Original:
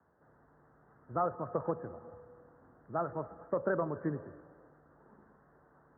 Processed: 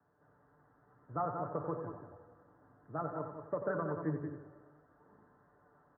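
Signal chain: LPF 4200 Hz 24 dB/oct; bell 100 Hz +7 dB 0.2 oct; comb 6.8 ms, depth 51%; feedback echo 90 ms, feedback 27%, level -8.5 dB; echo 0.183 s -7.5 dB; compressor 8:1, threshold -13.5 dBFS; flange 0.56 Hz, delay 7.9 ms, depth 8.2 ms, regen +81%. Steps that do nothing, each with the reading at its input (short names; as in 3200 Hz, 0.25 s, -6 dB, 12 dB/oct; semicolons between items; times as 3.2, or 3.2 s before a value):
LPF 4200 Hz: input band ends at 1800 Hz; compressor, threshold -13.5 dBFS: input peak -19.0 dBFS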